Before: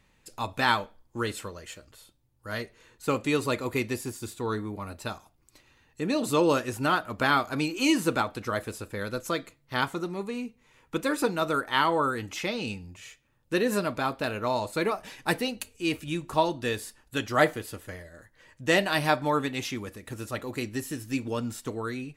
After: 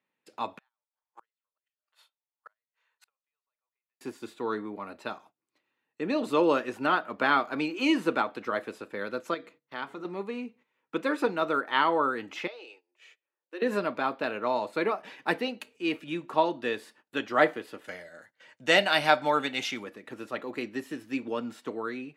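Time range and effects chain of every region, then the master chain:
0.58–4.01 HPF 730 Hz 24 dB/oct + compressor 8:1, threshold -34 dBFS + flipped gate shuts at -36 dBFS, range -37 dB
9.34–10.05 notches 60/120/180/240/300/360/420/480 Hz + compressor 1.5:1, threshold -45 dBFS
12.47–13.62 compressor 1.5:1, threshold -56 dBFS + Chebyshev high-pass 340 Hz, order 5
17.84–19.84 bell 7600 Hz +10.5 dB 2.6 oct + comb 1.4 ms, depth 36%
whole clip: gate -53 dBFS, range -16 dB; HPF 110 Hz; three-band isolator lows -23 dB, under 190 Hz, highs -17 dB, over 3800 Hz

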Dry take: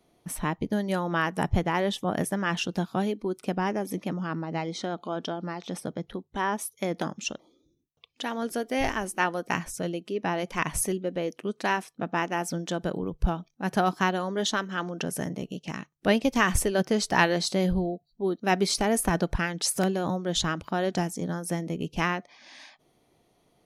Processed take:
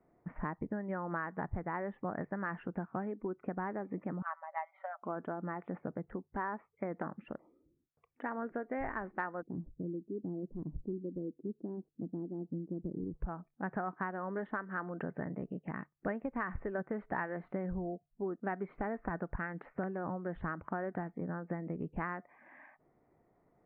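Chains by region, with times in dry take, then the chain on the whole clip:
4.22–5.03 brick-wall FIR high-pass 550 Hz + comb 5.2 ms, depth 72% + upward expander, over -44 dBFS
9.42–13.15 ladder low-pass 400 Hz, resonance 45% + low shelf 200 Hz +9 dB
whole clip: steep low-pass 2000 Hz 48 dB/oct; dynamic EQ 1300 Hz, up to +4 dB, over -39 dBFS, Q 0.99; compressor 6:1, threshold -30 dBFS; gain -4 dB

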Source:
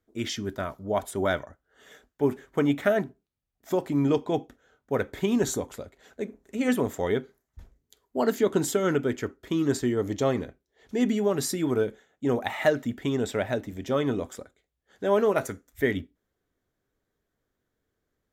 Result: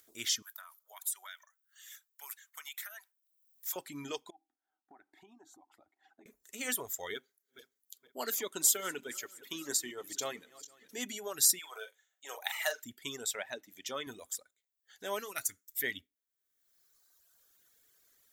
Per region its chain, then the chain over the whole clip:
0.42–3.76 HPF 970 Hz 24 dB/oct + high shelf 9400 Hz +8 dB + compressor 4:1, threshold -39 dBFS
4.3–6.26 double band-pass 500 Hz, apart 1.3 oct + compressor 2:1, threshold -49 dBFS
7.14–10.98 regenerating reverse delay 0.234 s, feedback 56%, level -12.5 dB + HPF 160 Hz
11.59–12.84 HPF 550 Hz 24 dB/oct + doubler 43 ms -7 dB
13.35–14.07 HPF 150 Hz + high shelf 8200 Hz -11.5 dB + mismatched tape noise reduction encoder only
15.19–15.84 bell 610 Hz -7.5 dB 1.4 oct + mismatched tape noise reduction encoder only
whole clip: reverb removal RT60 1.5 s; pre-emphasis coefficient 0.97; upward compressor, threshold -60 dBFS; gain +7 dB

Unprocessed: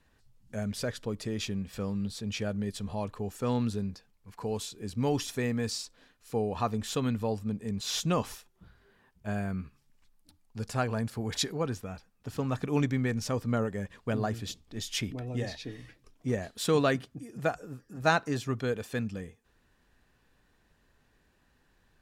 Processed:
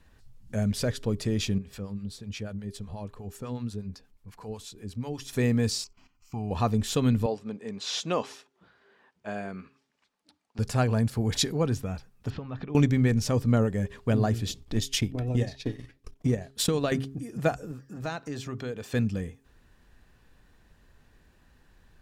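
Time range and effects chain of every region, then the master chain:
1.58–5.33 compressor 1.5:1, threshold -50 dBFS + harmonic tremolo 8.2 Hz, crossover 650 Hz
5.84–6.51 fixed phaser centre 2500 Hz, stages 8 + level quantiser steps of 13 dB
7.26–10.59 HPF 370 Hz + air absorption 84 m
12.3–12.75 LPF 4100 Hz 24 dB/oct + compressor 10:1, threshold -38 dBFS
14.61–16.92 transient shaper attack +7 dB, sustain -12 dB + compressor, threshold -26 dBFS
17.71–18.94 HPF 140 Hz 6 dB/oct + bell 11000 Hz -9 dB 0.37 oct + compressor 2:1, threshold -42 dBFS
whole clip: low shelf 140 Hz +7 dB; de-hum 135 Hz, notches 3; dynamic EQ 1300 Hz, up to -4 dB, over -45 dBFS, Q 0.87; gain +4.5 dB

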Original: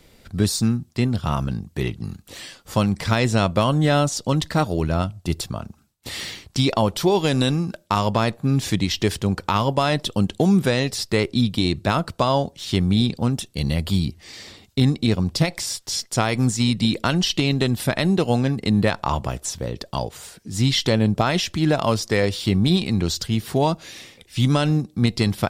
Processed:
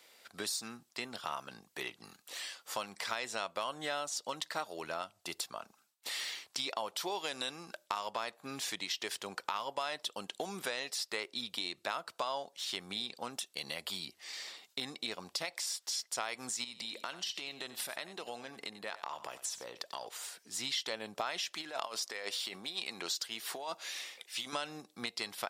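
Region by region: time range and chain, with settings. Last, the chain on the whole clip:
16.64–20.07 compressor 4:1, threshold -26 dBFS + echo 92 ms -15 dB
21.53–24.53 HPF 260 Hz 6 dB/oct + negative-ratio compressor -24 dBFS, ratio -0.5
whole clip: HPF 740 Hz 12 dB/oct; compressor 2.5:1, threshold -33 dBFS; gain -4 dB

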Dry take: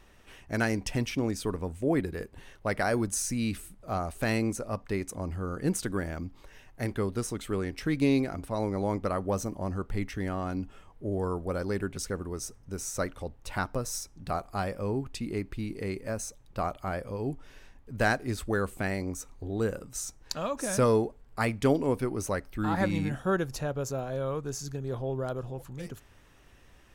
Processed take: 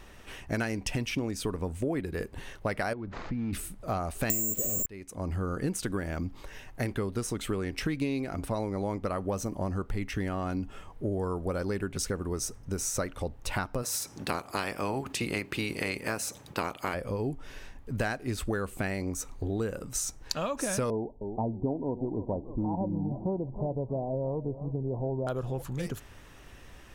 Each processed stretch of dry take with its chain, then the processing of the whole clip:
2.93–3.53 median filter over 15 samples + Gaussian blur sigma 2.4 samples + compressor 5:1, threshold -35 dBFS
4.3–4.86 infinite clipping + resonant low shelf 700 Hz +13 dB, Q 1.5 + careless resampling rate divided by 6×, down filtered, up zero stuff
13.82–16.93 spectral limiter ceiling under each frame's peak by 17 dB + HPF 92 Hz
20.9–25.27 rippled Chebyshev low-pass 970 Hz, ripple 3 dB + warbling echo 0.313 s, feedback 36%, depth 146 cents, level -17.5 dB
whole clip: dynamic EQ 2700 Hz, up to +4 dB, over -52 dBFS, Q 3.4; compressor 6:1, threshold -35 dBFS; gain +7 dB

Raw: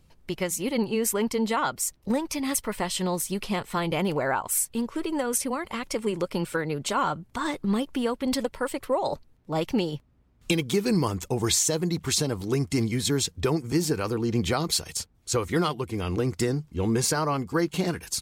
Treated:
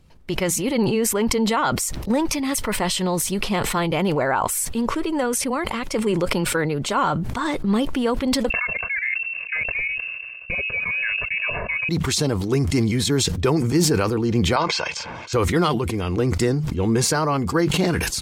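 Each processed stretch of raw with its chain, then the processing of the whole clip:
8.5–11.89 comb 1.9 ms, depth 83% + level quantiser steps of 14 dB + inverted band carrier 2700 Hz
14.56–15.33 speaker cabinet 300–5300 Hz, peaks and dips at 420 Hz -9 dB, 870 Hz +10 dB, 1500 Hz +5 dB, 2400 Hz +8 dB, 4100 Hz -7 dB + comb 1.9 ms, depth 57%
whole clip: high shelf 7100 Hz -6.5 dB; sustainer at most 27 dB/s; gain +4.5 dB

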